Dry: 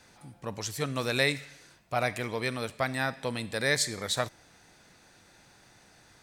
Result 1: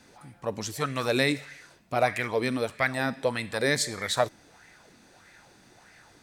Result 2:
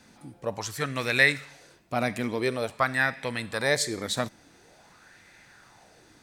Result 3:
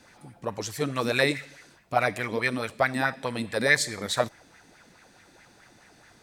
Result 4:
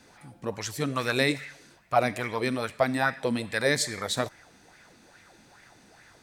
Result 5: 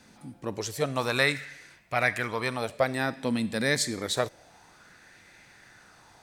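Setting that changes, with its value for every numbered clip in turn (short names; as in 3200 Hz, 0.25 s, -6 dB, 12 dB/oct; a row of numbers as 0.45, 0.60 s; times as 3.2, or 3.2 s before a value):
LFO bell, rate: 1.6, 0.47, 4.7, 2.4, 0.28 Hz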